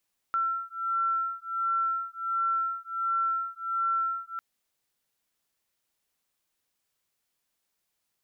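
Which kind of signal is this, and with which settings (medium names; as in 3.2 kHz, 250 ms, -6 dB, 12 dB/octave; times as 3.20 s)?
beating tones 1.35 kHz, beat 1.4 Hz, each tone -29.5 dBFS 4.05 s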